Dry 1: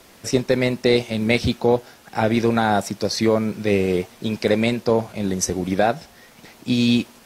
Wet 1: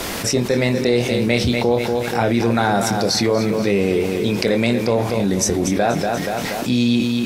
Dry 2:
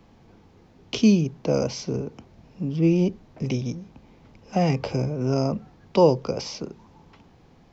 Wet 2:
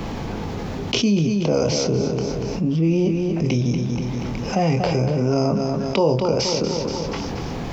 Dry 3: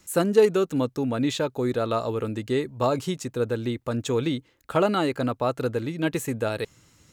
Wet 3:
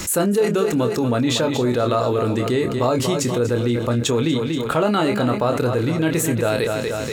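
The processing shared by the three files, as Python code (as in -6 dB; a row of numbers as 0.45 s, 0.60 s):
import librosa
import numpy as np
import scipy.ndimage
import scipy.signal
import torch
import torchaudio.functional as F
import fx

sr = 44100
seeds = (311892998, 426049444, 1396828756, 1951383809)

y = fx.doubler(x, sr, ms=25.0, db=-8)
y = fx.echo_feedback(y, sr, ms=239, feedback_pct=40, wet_db=-11.5)
y = fx.env_flatten(y, sr, amount_pct=70)
y = y * 10.0 ** (-3.5 / 20.0)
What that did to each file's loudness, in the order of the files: +2.0 LU, +2.5 LU, +5.5 LU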